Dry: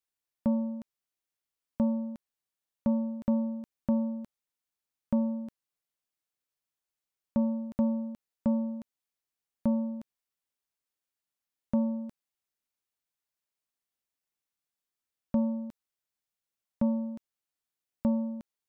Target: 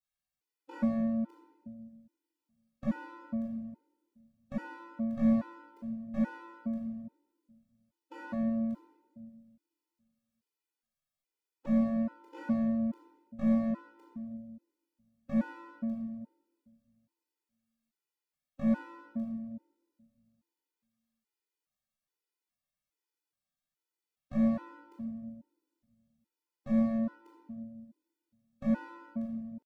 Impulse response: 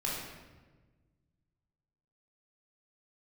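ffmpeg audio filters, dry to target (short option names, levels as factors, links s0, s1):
-filter_complex "[0:a]atempo=0.63,aeval=exprs='0.141*(cos(1*acos(clip(val(0)/0.141,-1,1)))-cos(1*PI/2))+0.00112*(cos(2*acos(clip(val(0)/0.141,-1,1)))-cos(2*PI/2))':c=same,asplit=2[s0][s1];[s1]aeval=exprs='0.0266*(abs(mod(val(0)/0.0266+3,4)-2)-1)':c=same,volume=0.631[s2];[s0][s2]amix=inputs=2:normalize=0[s3];[1:a]atrim=start_sample=2205[s4];[s3][s4]afir=irnorm=-1:irlink=0,afftfilt=real='re*gt(sin(2*PI*1.2*pts/sr)*(1-2*mod(floor(b*sr/1024/260),2)),0)':imag='im*gt(sin(2*PI*1.2*pts/sr)*(1-2*mod(floor(b*sr/1024/260),2)),0)':win_size=1024:overlap=0.75,volume=0.447"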